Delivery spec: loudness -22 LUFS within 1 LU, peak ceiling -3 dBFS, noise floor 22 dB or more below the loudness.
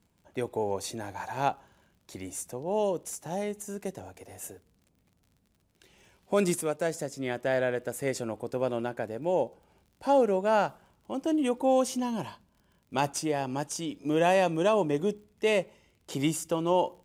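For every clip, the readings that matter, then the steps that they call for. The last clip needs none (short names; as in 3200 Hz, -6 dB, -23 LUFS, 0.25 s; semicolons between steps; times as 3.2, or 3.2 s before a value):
ticks 42/s; loudness -29.5 LUFS; peak -13.5 dBFS; loudness target -22.0 LUFS
-> de-click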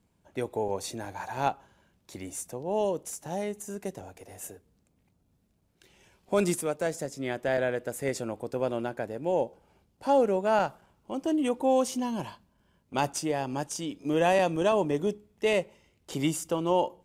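ticks 0.29/s; loudness -29.5 LUFS; peak -13.5 dBFS; loudness target -22.0 LUFS
-> gain +7.5 dB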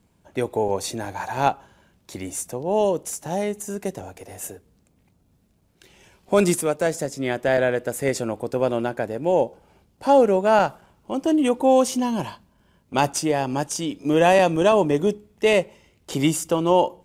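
loudness -22.0 LUFS; peak -6.0 dBFS; noise floor -63 dBFS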